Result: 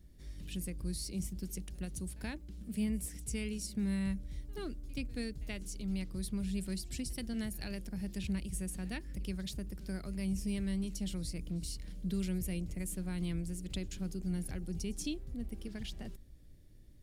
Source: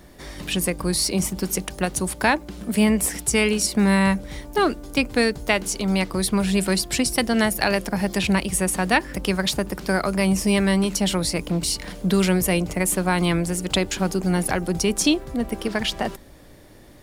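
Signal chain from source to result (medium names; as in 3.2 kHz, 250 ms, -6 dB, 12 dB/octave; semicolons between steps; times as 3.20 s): amplifier tone stack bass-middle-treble 10-0-1; on a send: reverse echo 79 ms -22 dB; on the sum: trim +1 dB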